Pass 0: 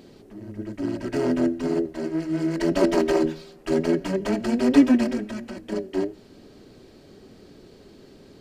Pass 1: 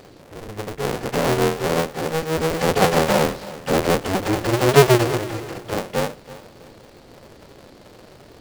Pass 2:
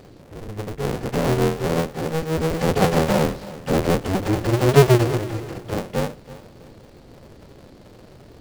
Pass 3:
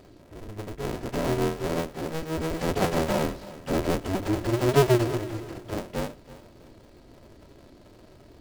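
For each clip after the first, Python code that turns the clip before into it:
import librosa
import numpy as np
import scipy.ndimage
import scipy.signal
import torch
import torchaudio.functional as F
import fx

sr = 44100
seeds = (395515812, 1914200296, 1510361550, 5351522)

y1 = fx.cycle_switch(x, sr, every=2, mode='inverted')
y1 = fx.echo_feedback(y1, sr, ms=328, feedback_pct=32, wet_db=-17.5)
y1 = y1 * 10.0 ** (3.0 / 20.0)
y2 = fx.low_shelf(y1, sr, hz=320.0, db=9.0)
y2 = y2 * 10.0 ** (-4.5 / 20.0)
y3 = y2 + 0.34 * np.pad(y2, (int(3.1 * sr / 1000.0), 0))[:len(y2)]
y3 = y3 * 10.0 ** (-6.0 / 20.0)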